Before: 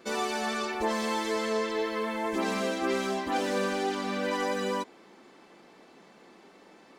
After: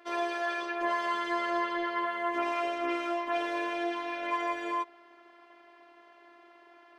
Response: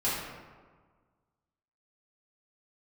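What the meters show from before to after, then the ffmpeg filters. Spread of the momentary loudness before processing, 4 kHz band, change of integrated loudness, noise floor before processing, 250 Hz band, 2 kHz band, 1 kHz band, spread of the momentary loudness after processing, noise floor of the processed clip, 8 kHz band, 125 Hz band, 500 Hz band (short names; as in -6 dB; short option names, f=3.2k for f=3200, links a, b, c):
2 LU, -5.5 dB, -1.5 dB, -56 dBFS, -4.0 dB, 0.0 dB, +1.0 dB, 3 LU, -58 dBFS, -14.0 dB, n/a, -4.0 dB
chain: -filter_complex "[0:a]acrossover=split=420 3100:gain=0.0794 1 0.112[a][b][c];[a][b][c]amix=inputs=3:normalize=0,afftfilt=real='hypot(re,im)*cos(PI*b)':imag='0':win_size=512:overlap=0.75,volume=5.5dB"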